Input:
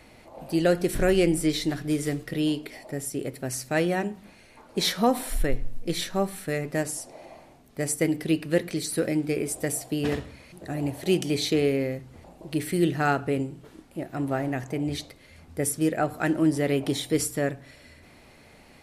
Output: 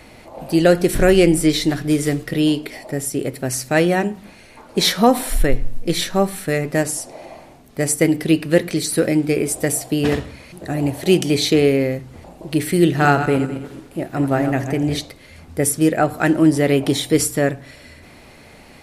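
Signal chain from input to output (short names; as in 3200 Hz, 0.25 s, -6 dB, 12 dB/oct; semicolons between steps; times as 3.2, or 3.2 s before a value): 12.84–14.99 regenerating reverse delay 0.105 s, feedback 50%, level -9 dB; gain +8.5 dB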